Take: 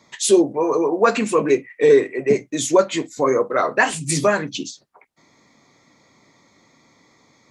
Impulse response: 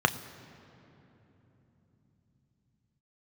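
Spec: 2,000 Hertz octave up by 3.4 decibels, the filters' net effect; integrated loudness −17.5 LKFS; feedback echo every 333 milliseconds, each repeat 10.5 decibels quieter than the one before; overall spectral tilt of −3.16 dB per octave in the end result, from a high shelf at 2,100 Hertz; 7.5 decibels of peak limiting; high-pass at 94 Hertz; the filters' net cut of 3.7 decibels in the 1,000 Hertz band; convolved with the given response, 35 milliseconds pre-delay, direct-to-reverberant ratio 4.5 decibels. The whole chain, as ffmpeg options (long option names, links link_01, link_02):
-filter_complex "[0:a]highpass=94,equalizer=frequency=1000:width_type=o:gain=-7.5,equalizer=frequency=2000:width_type=o:gain=3.5,highshelf=frequency=2100:gain=6,alimiter=limit=-8.5dB:level=0:latency=1,aecho=1:1:333|666|999:0.299|0.0896|0.0269,asplit=2[link_01][link_02];[1:a]atrim=start_sample=2205,adelay=35[link_03];[link_02][link_03]afir=irnorm=-1:irlink=0,volume=-18dB[link_04];[link_01][link_04]amix=inputs=2:normalize=0,volume=1dB"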